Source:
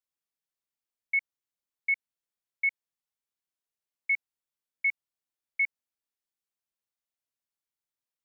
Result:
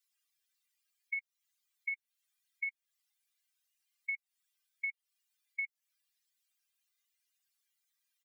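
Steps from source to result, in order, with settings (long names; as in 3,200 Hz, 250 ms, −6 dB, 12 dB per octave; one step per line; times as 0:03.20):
expanding power law on the bin magnitudes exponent 2.7
Chebyshev high-pass filter 2,100 Hz
comb filter 2.5 ms, depth 53%
downward compressor, threshold −46 dBFS, peak gain reduction 14 dB
level +10 dB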